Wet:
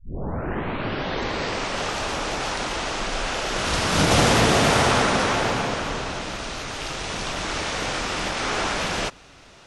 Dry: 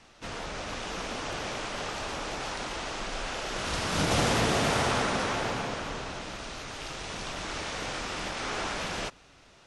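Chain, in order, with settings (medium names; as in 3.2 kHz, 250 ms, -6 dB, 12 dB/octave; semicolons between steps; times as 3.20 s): tape start-up on the opening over 1.83 s; trim +8 dB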